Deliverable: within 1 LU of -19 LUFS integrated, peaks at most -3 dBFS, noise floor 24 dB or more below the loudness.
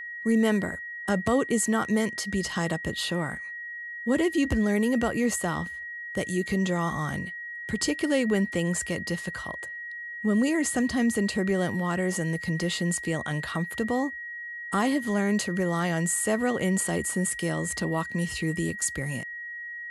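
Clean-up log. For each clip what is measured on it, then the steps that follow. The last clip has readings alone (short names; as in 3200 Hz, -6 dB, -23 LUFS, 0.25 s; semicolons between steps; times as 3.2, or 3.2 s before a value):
steady tone 1900 Hz; tone level -35 dBFS; loudness -27.5 LUFS; peak -13.0 dBFS; loudness target -19.0 LUFS
-> notch 1900 Hz, Q 30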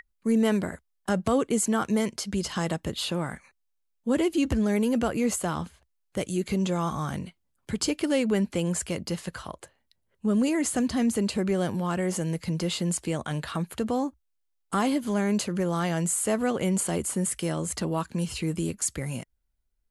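steady tone none; loudness -27.5 LUFS; peak -13.5 dBFS; loudness target -19.0 LUFS
-> gain +8.5 dB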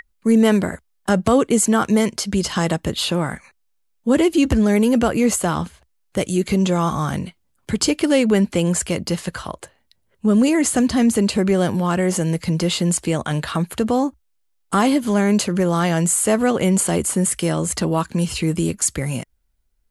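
loudness -19.0 LUFS; peak -5.0 dBFS; noise floor -66 dBFS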